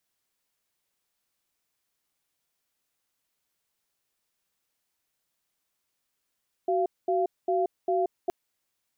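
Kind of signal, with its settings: cadence 374 Hz, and 690 Hz, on 0.18 s, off 0.22 s, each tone -25 dBFS 1.62 s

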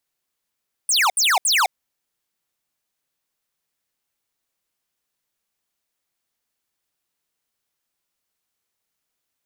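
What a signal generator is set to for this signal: burst of laser zaps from 9.9 kHz, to 680 Hz, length 0.21 s square, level -17 dB, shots 3, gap 0.07 s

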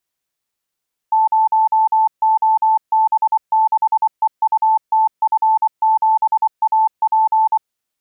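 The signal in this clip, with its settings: Morse "0OB6EUTF7AP" 24 wpm 878 Hz -10.5 dBFS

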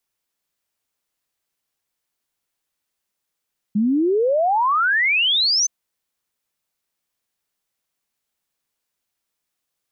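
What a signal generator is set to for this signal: log sweep 200 Hz -> 6.3 kHz 1.92 s -15 dBFS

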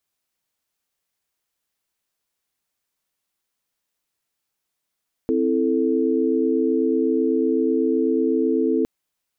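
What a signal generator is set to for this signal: chord C4/E4/A4 sine, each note -21.5 dBFS 3.56 s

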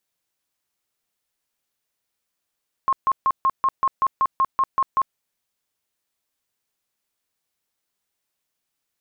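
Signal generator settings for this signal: tone bursts 1.07 kHz, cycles 51, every 0.19 s, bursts 12, -15 dBFS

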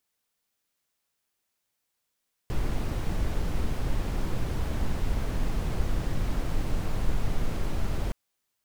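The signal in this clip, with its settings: noise brown, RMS -25.5 dBFS 5.62 s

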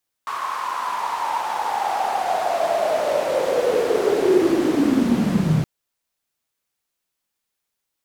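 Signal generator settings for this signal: swept filtered noise white, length 5.37 s bandpass, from 1.1 kHz, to 140 Hz, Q 9.6, linear, gain ramp +17.5 dB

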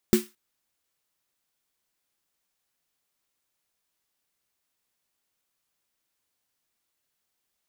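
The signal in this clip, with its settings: snare drum length 0.22 s, tones 220 Hz, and 360 Hz, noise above 1.1 kHz, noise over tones -10.5 dB, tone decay 0.19 s, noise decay 0.28 s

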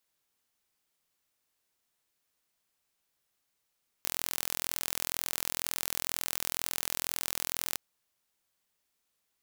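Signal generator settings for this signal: pulse train 42.1 per s, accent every 0, -5 dBFS 3.71 s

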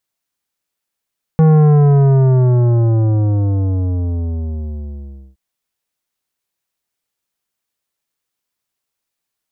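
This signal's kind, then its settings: sub drop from 160 Hz, over 3.97 s, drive 12 dB, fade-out 3.89 s, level -7.5 dB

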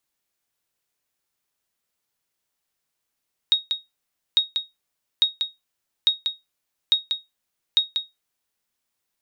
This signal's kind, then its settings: sonar ping 3.76 kHz, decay 0.19 s, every 0.85 s, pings 6, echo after 0.19 s, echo -7 dB -9 dBFS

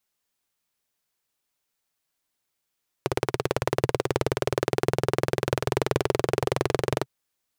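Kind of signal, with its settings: single-cylinder engine model, changing speed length 4.00 s, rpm 2100, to 2700, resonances 130/400 Hz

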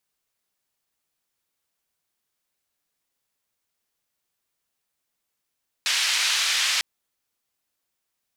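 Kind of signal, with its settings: noise band 1.9–4.6 kHz, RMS -23 dBFS 0.95 s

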